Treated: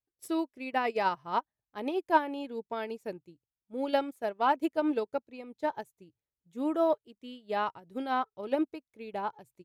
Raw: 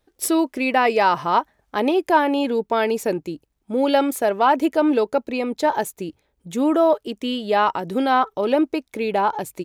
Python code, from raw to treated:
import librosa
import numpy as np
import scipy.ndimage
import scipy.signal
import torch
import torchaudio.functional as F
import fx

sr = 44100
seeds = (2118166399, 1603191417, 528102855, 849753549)

y = fx.peak_eq(x, sr, hz=120.0, db=12.0, octaves=0.77)
y = fx.upward_expand(y, sr, threshold_db=-29.0, expansion=2.5)
y = F.gain(torch.from_numpy(y), -6.0).numpy()